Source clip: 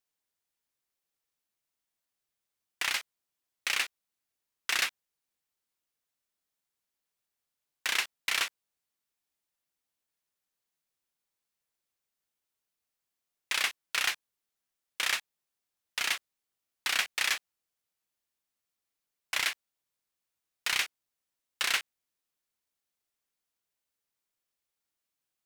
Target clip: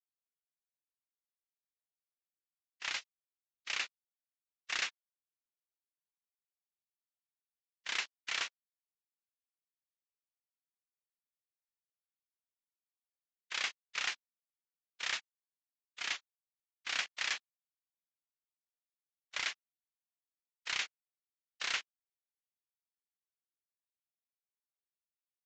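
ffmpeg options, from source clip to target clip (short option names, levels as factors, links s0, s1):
-af "agate=range=0.0224:threshold=0.0282:ratio=16:detection=peak,volume=0.473" -ar 16000 -c:a libvorbis -b:a 32k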